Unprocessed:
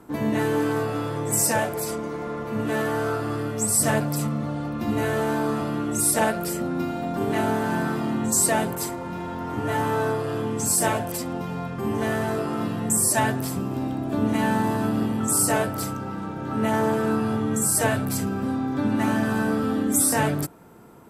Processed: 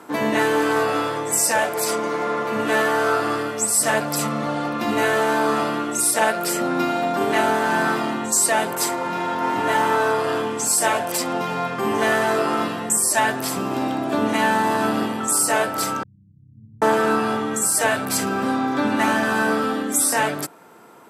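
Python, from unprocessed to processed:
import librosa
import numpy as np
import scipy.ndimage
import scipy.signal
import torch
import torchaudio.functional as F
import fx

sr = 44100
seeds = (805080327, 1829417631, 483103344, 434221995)

y = fx.echo_throw(x, sr, start_s=8.99, length_s=0.54, ms=430, feedback_pct=45, wet_db=-1.5)
y = fx.cheby2_lowpass(y, sr, hz=640.0, order=4, stop_db=80, at=(16.03, 16.82))
y = fx.weighting(y, sr, curve='A')
y = fx.rider(y, sr, range_db=4, speed_s=0.5)
y = y * 10.0 ** (7.0 / 20.0)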